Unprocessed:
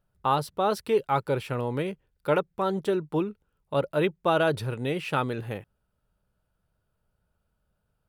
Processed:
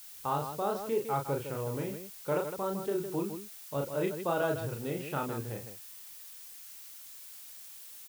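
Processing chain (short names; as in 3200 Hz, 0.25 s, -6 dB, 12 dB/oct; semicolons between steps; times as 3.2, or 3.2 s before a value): high shelf 2200 Hz -10 dB; added noise blue -43 dBFS; on a send: loudspeakers at several distances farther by 12 m -4 dB, 54 m -8 dB; on the sum: gain -7.5 dB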